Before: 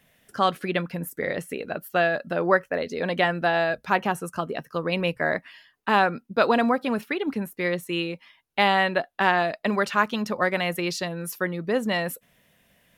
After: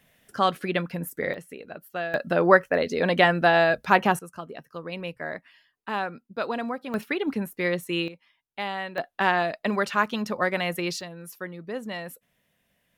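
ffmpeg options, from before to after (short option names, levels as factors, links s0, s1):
-af "asetnsamples=n=441:p=0,asendcmd='1.34 volume volume -9dB;2.14 volume volume 3.5dB;4.19 volume volume -9dB;6.94 volume volume 0dB;8.08 volume volume -11dB;8.98 volume volume -1.5dB;11.01 volume volume -9dB',volume=0.944"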